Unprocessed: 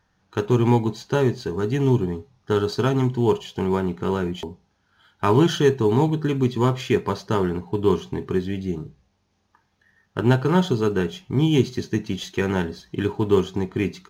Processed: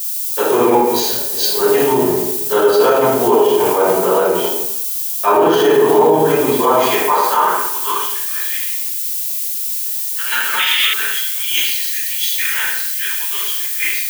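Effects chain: 0.74–1.56 negative-ratio compressor -34 dBFS, ratio -1; 11.76–12.51 bell 650 Hz -8 dB 2.1 oct; shoebox room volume 520 m³, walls mixed, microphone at 5.6 m; added noise violet -22 dBFS; high-pass sweep 550 Hz -> 1800 Hz, 6.57–8.53; 10.59–10.94 painted sound noise 1700–3700 Hz -13 dBFS; on a send: thinning echo 0.251 s, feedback 65%, high-pass 230 Hz, level -21 dB; on the sum: maximiser +4.5 dB; three-band expander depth 100%; gain -3 dB

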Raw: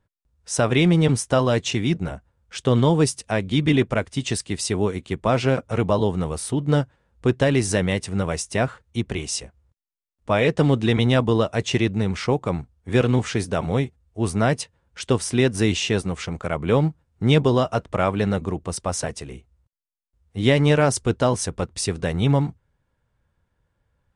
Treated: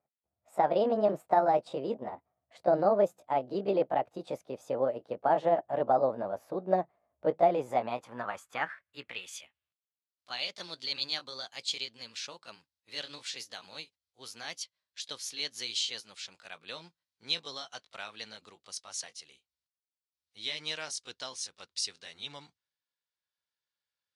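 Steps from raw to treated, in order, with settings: gliding pitch shift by +5.5 st ending unshifted; band-pass sweep 660 Hz -> 4500 Hz, 7.48–10.19

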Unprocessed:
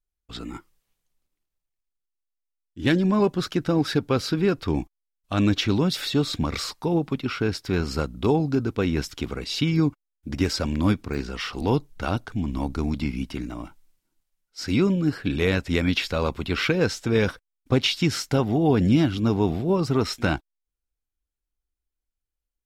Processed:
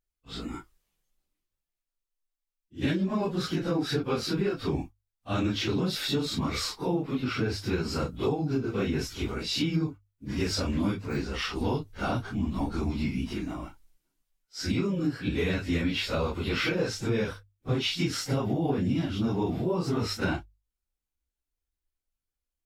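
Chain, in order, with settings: phase scrambler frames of 0.1 s; notches 50/100 Hz; compressor, threshold -23 dBFS, peak gain reduction 9.5 dB; gain -1 dB

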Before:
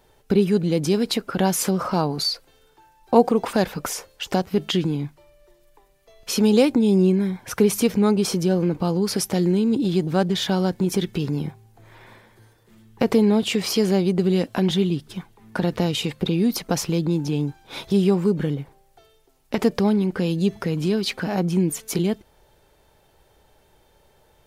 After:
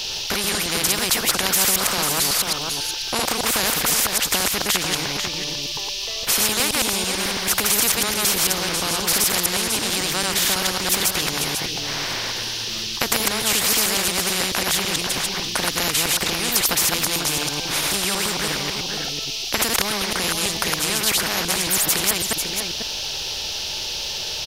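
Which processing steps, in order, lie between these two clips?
reverse delay 0.11 s, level -1 dB; tilt shelf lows -4 dB, about 1100 Hz; band noise 2800–5600 Hz -44 dBFS; on a send: echo 0.494 s -17.5 dB; on the sum: spectral compressor 4:1; gain +1.5 dB

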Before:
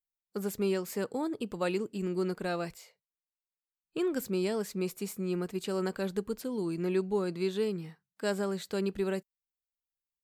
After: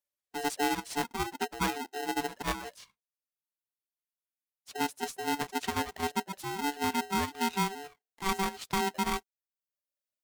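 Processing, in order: gliding pitch shift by -6.5 st ending unshifted; in parallel at +2.5 dB: level quantiser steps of 11 dB; on the sum: reverb removal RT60 0.82 s; spectral freeze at 3.35, 1.33 s; polarity switched at an audio rate 580 Hz; gain -3 dB

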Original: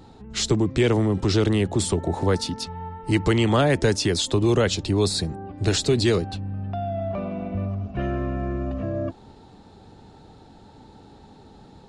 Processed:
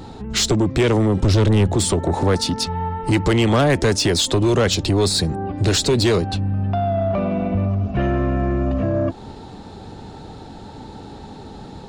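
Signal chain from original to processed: 1.22–1.75 low shelf 130 Hz +11 dB; in parallel at +2.5 dB: compressor, threshold -30 dBFS, peak gain reduction 17 dB; on the sum: soft clip -14.5 dBFS, distortion -12 dB; gain +4 dB

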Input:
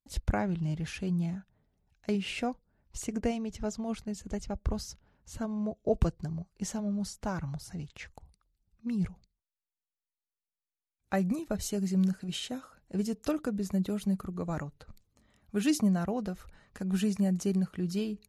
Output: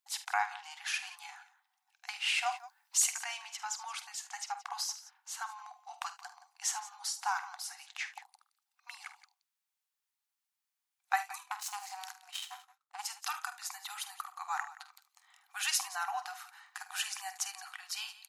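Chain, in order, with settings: 2.46–3.22 high shelf 2400 Hz +9.5 dB; in parallel at -2.5 dB: limiter -24 dBFS, peak gain reduction 10.5 dB; 11.38–13.03 on the sum: power-law curve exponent 2; brick-wall FIR high-pass 720 Hz; tapped delay 48/75/173 ms -12/-16.5/-17 dB; gain +2 dB

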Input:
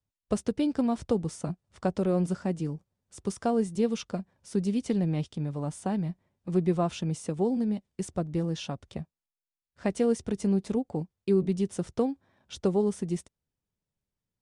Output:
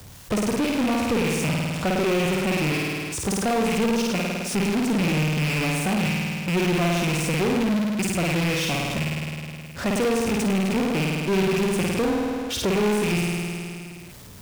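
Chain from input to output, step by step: rattling part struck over -39 dBFS, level -24 dBFS; HPF 49 Hz 6 dB/oct; flutter echo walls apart 9 m, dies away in 0.97 s; power-law curve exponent 0.35; gain -4.5 dB

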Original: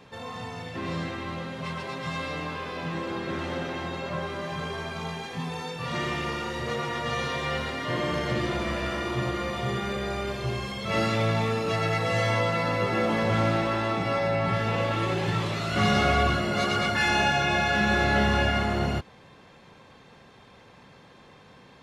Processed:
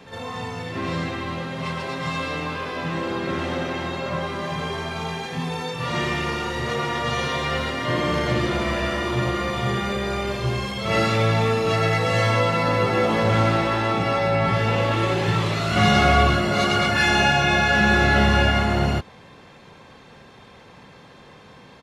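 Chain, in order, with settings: on a send: reverse echo 56 ms -10 dB; on the sum: downsampling 32000 Hz; gain +5 dB

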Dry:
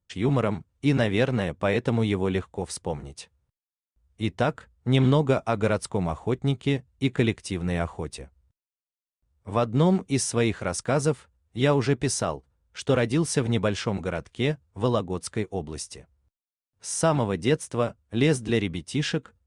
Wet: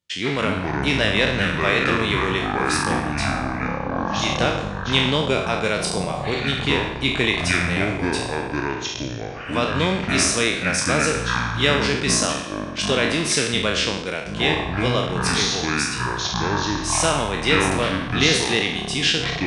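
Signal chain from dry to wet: spectral trails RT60 0.72 s; weighting filter D; echoes that change speed 94 ms, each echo -7 st, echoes 3; gain -1 dB

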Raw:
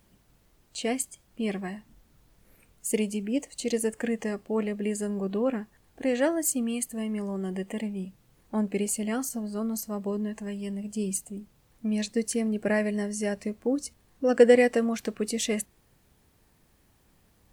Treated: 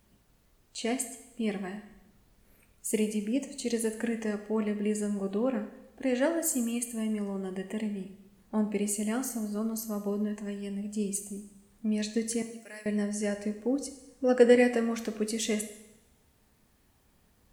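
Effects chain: 12.42–12.86 pre-emphasis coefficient 0.97; two-slope reverb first 0.85 s, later 2.2 s, from -24 dB, DRR 7 dB; gain -3 dB

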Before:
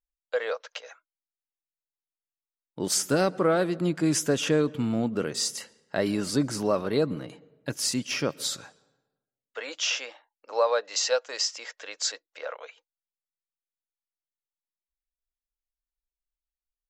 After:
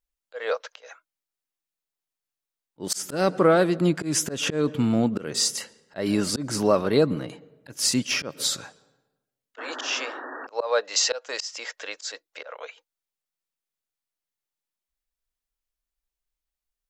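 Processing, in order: auto swell 0.185 s; painted sound noise, 9.58–10.47, 240–1900 Hz -42 dBFS; gain +5 dB

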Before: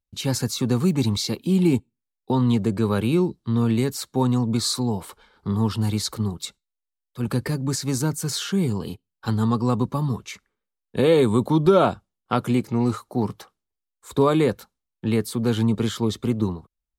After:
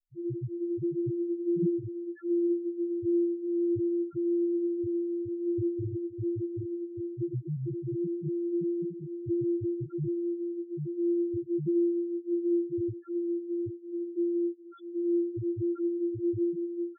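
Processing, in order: sample sorter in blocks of 128 samples; comb 6.4 ms, depth 52%; compressor 3:1, threshold -21 dBFS, peak gain reduction 9 dB; echo with dull and thin repeats by turns 0.778 s, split 1100 Hz, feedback 50%, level -3.5 dB; loudest bins only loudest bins 1

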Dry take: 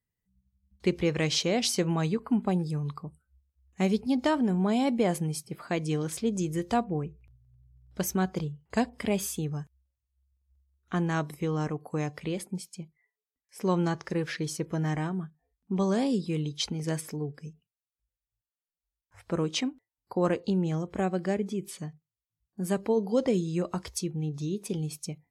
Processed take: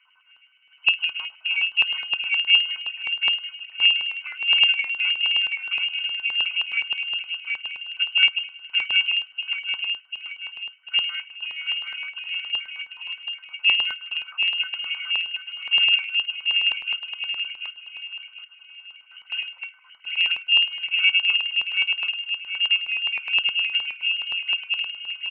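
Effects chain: switching spikes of -25 dBFS; octave resonator F#, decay 0.11 s; inverted band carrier 3000 Hz; feedback echo 0.743 s, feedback 41%, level -3.5 dB; LFO high-pass square 9.6 Hz 970–2100 Hz; gain +6.5 dB

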